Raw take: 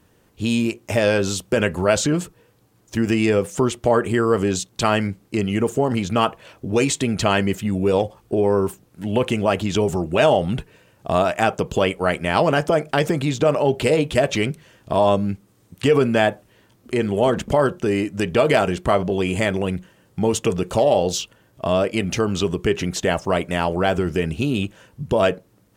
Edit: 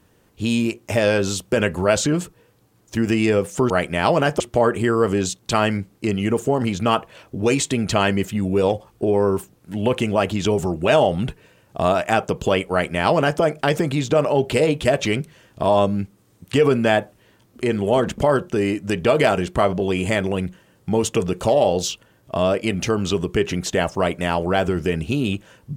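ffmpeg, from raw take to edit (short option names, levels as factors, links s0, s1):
-filter_complex "[0:a]asplit=3[s0][s1][s2];[s0]atrim=end=3.702[s3];[s1]atrim=start=12.008:end=12.712[s4];[s2]atrim=start=3.698[s5];[s3][s4]acrossfade=d=0.004:c1=hsin:c2=hsin[s6];[s6][s5]acrossfade=d=0.004:c1=hsin:c2=hsin"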